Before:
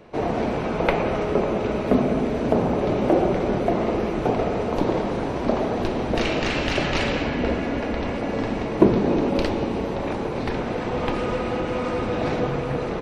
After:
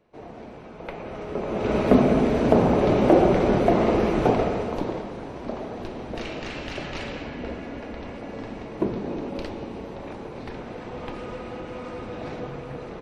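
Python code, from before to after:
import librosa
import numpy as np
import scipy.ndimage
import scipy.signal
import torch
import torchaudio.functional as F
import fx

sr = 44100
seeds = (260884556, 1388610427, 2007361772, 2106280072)

y = fx.gain(x, sr, db=fx.line((0.76, -17.0), (1.42, -7.5), (1.76, 2.5), (4.26, 2.5), (5.11, -10.0)))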